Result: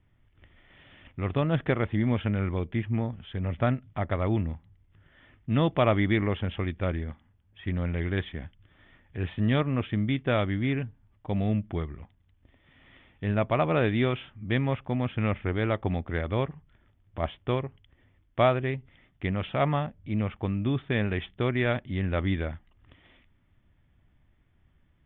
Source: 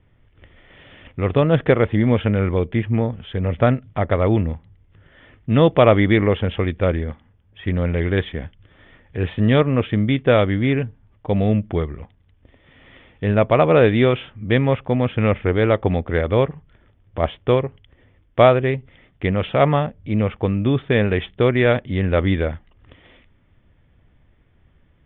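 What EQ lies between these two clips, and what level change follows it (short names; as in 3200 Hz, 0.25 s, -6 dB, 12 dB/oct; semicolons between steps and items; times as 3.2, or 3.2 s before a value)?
bell 480 Hz -7.5 dB 0.47 oct; -8.0 dB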